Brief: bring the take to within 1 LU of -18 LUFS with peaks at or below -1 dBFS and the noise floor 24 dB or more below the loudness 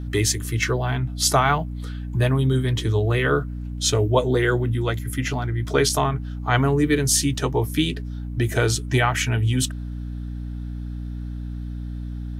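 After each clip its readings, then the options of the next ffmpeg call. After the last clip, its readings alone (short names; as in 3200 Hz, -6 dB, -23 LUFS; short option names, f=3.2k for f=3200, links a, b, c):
hum 60 Hz; harmonics up to 300 Hz; hum level -27 dBFS; loudness -22.0 LUFS; peak -4.0 dBFS; loudness target -18.0 LUFS
-> -af "bandreject=f=60:t=h:w=6,bandreject=f=120:t=h:w=6,bandreject=f=180:t=h:w=6,bandreject=f=240:t=h:w=6,bandreject=f=300:t=h:w=6"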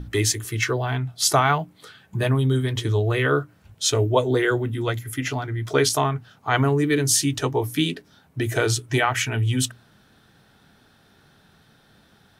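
hum none; loudness -22.5 LUFS; peak -4.0 dBFS; loudness target -18.0 LUFS
-> -af "volume=4.5dB,alimiter=limit=-1dB:level=0:latency=1"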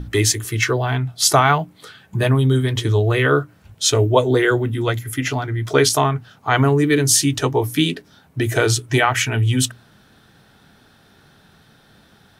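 loudness -18.0 LUFS; peak -1.0 dBFS; noise floor -53 dBFS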